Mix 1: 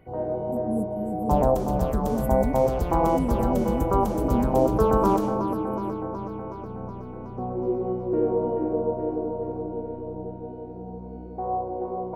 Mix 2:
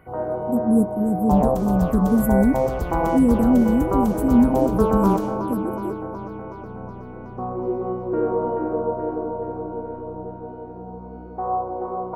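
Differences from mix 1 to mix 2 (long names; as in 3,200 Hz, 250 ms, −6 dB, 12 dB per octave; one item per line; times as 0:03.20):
speech +11.0 dB
first sound: add parametric band 1,300 Hz +14 dB 0.94 octaves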